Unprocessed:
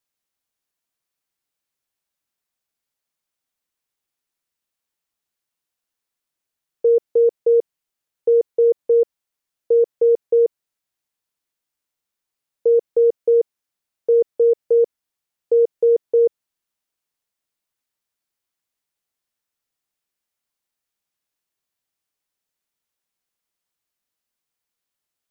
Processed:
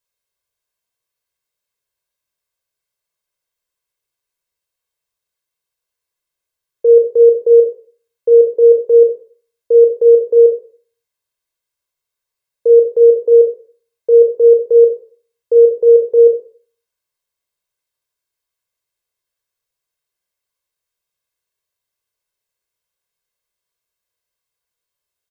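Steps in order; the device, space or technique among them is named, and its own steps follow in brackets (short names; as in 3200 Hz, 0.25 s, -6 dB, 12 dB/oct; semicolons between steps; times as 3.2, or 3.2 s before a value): microphone above a desk (comb 1.9 ms, depth 63%; reverb RT60 0.45 s, pre-delay 23 ms, DRR 3.5 dB); gain -1 dB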